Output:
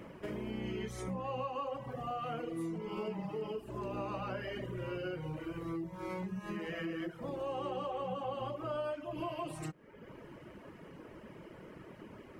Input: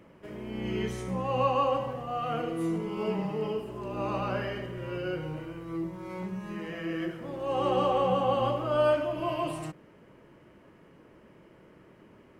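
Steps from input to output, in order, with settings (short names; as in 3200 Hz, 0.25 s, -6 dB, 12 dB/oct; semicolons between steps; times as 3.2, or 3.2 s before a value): reverb removal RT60 0.74 s; compressor 6:1, threshold -43 dBFS, peak gain reduction 19.5 dB; gain +6 dB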